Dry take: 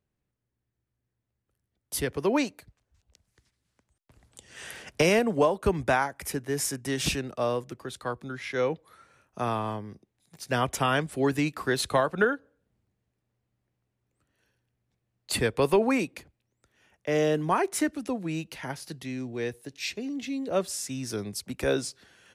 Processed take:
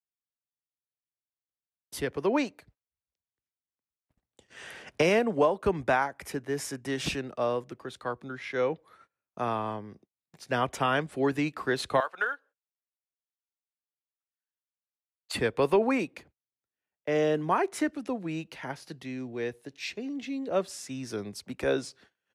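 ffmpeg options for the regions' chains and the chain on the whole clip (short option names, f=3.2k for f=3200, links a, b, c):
-filter_complex "[0:a]asettb=1/sr,asplit=3[a][b][c];[a]atrim=end=12.004[d];[b]atrim=start=12:end=15.35,asetpts=PTS-STARTPTS,afade=t=in:d=0.004:c=qsin,afade=t=out:st=3.346:d=0.004:c=qsin,highpass=980,acrusher=bits=8:mode=log:mix=0:aa=0.000001[e];[c]atrim=start=15.346[f];[d][e]acrossfade=d=0.004:c1=hsin:c2=qsin[g];[g][f]acrossfade=d=0.004:c1=qsin:c2=hsin,lowpass=f=3k:p=1,agate=range=-27dB:threshold=-55dB:ratio=16:detection=peak,lowshelf=f=140:g=-9"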